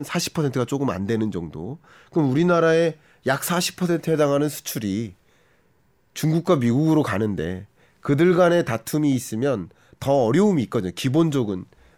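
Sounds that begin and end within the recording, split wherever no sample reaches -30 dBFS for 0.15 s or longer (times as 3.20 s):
2.16–2.92 s
3.26–5.09 s
6.16–7.61 s
8.05–9.65 s
10.02–11.63 s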